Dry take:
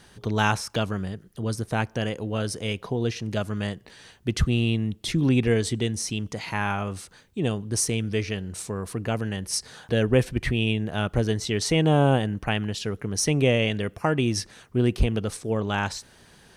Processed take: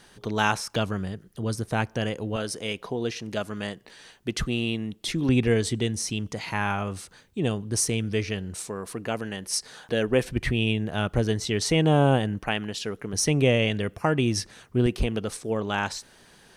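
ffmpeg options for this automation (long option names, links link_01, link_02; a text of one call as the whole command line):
ffmpeg -i in.wav -af "asetnsamples=nb_out_samples=441:pad=0,asendcmd='0.72 equalizer g -1;2.36 equalizer g -11.5;5.29 equalizer g -1;8.55 equalizer g -12;10.25 equalizer g -1;12.4 equalizer g -10.5;13.13 equalizer g 0;14.86 equalizer g -7',equalizer=frequency=80:width_type=o:width=2:gain=-8" out.wav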